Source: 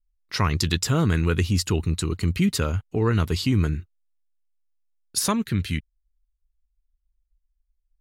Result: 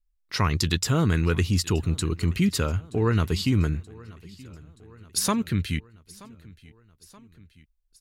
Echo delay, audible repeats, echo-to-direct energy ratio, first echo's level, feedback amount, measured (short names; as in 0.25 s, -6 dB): 0.927 s, 3, -20.5 dB, -22.5 dB, 59%